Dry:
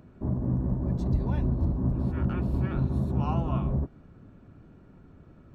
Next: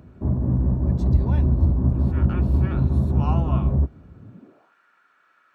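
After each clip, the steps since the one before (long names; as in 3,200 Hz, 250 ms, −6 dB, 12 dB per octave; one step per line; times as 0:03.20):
high-pass filter sweep 63 Hz → 1,500 Hz, 0:04.18–0:04.75
level +3.5 dB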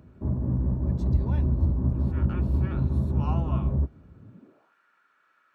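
notch filter 720 Hz, Q 17
level −5 dB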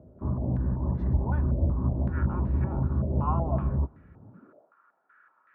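low-pass on a step sequencer 5.3 Hz 610–1,900 Hz
level −2 dB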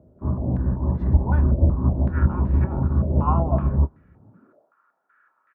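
double-tracking delay 27 ms −12 dB
expander for the loud parts 1.5 to 1, over −39 dBFS
level +8.5 dB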